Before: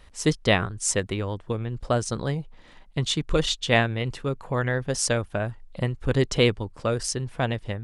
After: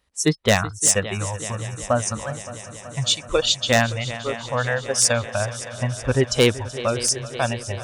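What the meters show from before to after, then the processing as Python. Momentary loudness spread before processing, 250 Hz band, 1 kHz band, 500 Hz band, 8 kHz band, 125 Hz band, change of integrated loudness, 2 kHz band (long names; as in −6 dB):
9 LU, +1.0 dB, +4.0 dB, +3.0 dB, +9.0 dB, +1.0 dB, +4.0 dB, +3.5 dB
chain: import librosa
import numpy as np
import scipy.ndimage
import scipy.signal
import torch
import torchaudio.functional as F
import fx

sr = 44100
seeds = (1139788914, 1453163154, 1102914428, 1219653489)

y = fx.noise_reduce_blind(x, sr, reduce_db=20)
y = scipy.signal.sosfilt(scipy.signal.butter(2, 56.0, 'highpass', fs=sr, output='sos'), y)
y = fx.bass_treble(y, sr, bass_db=-1, treble_db=5)
y = fx.echo_heads(y, sr, ms=189, heads='second and third', feedback_pct=74, wet_db=-17)
y = 10.0 ** (-11.5 / 20.0) * (np.abs((y / 10.0 ** (-11.5 / 20.0) + 3.0) % 4.0 - 2.0) - 1.0)
y = F.gain(torch.from_numpy(y), 4.5).numpy()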